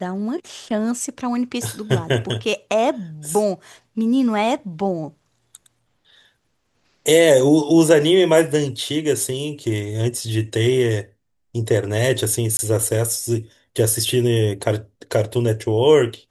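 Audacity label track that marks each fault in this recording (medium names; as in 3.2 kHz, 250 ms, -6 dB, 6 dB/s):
12.570000	12.590000	dropout 20 ms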